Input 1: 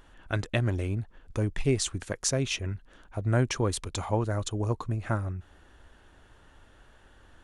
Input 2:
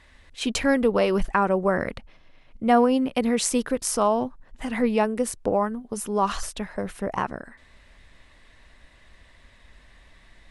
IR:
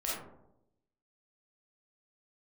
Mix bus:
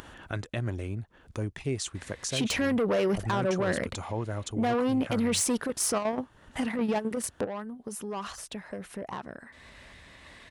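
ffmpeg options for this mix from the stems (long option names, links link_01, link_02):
-filter_complex "[0:a]volume=-4dB,asplit=2[link_01][link_02];[1:a]asoftclip=type=tanh:threshold=-21dB,adelay=1950,volume=3dB[link_03];[link_02]apad=whole_len=549273[link_04];[link_03][link_04]sidechaingate=range=-13dB:threshold=-58dB:ratio=16:detection=peak[link_05];[link_01][link_05]amix=inputs=2:normalize=0,acompressor=mode=upward:threshold=-31dB:ratio=2.5,highpass=72,alimiter=limit=-20.5dB:level=0:latency=1:release=31"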